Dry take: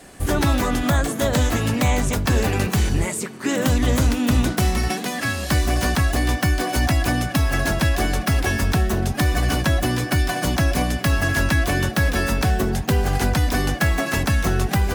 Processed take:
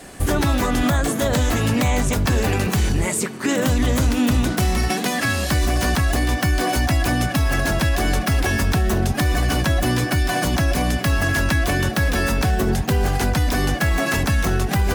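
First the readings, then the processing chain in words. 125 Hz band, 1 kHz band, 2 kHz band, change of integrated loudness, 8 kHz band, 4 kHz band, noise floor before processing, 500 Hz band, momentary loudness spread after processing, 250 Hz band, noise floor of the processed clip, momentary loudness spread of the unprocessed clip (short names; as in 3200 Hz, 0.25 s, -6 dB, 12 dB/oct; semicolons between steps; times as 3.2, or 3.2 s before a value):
+0.5 dB, +1.0 dB, +1.0 dB, +1.0 dB, +1.5 dB, +1.0 dB, -30 dBFS, +1.0 dB, 1 LU, +1.0 dB, -26 dBFS, 2 LU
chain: limiter -15.5 dBFS, peak gain reduction 5.5 dB; gain +4.5 dB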